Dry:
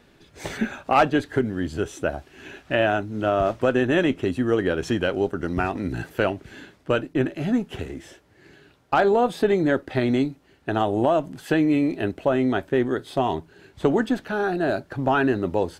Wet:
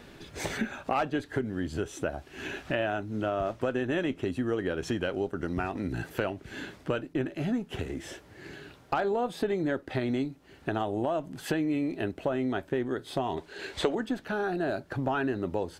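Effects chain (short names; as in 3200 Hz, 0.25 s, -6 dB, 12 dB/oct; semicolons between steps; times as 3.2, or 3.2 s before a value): 13.37–13.95 graphic EQ 125/500/1000/2000/4000/8000 Hz -11/+8/+3/+8/+9/+7 dB; compressor 2.5:1, threshold -40 dBFS, peak gain reduction 20 dB; gain +6 dB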